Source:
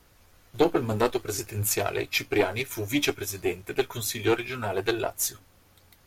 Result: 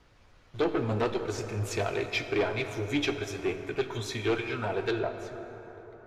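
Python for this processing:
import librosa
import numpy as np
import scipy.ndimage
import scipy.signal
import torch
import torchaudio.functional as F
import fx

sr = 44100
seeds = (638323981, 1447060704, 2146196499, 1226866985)

y = 10.0 ** (-19.5 / 20.0) * np.tanh(x / 10.0 ** (-19.5 / 20.0))
y = fx.lowpass(y, sr, hz=fx.steps((0.0, 4400.0), (4.99, 1600.0)), slope=12)
y = fx.rev_plate(y, sr, seeds[0], rt60_s=4.7, hf_ratio=0.4, predelay_ms=0, drr_db=7.5)
y = y * 10.0 ** (-1.0 / 20.0)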